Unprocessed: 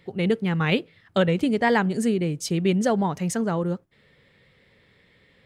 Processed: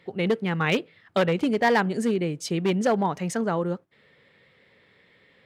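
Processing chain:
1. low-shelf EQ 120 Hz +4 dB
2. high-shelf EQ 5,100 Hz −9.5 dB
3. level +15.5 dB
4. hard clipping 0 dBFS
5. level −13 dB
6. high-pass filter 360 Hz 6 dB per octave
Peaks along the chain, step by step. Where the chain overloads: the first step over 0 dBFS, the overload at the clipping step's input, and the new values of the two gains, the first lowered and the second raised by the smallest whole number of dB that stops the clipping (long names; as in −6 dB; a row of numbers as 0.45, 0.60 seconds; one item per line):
−9.0, −9.5, +6.0, 0.0, −13.0, −9.0 dBFS
step 3, 6.0 dB
step 3 +9.5 dB, step 5 −7 dB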